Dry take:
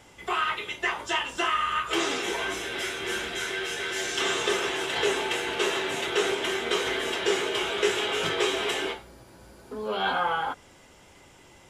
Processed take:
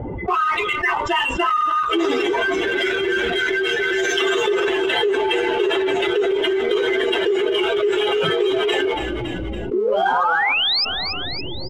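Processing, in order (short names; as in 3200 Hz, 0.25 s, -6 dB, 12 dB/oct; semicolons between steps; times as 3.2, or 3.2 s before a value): spectral contrast raised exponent 2.1; low-pass opened by the level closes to 490 Hz, open at -25.5 dBFS; in parallel at -5 dB: backlash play -29.5 dBFS; on the sum: painted sound rise, 9.73–10.85, 340–5300 Hz -24 dBFS; on a send: frequency-shifting echo 0.281 s, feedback 43%, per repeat -33 Hz, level -19.5 dB; on the sum: fast leveller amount 70%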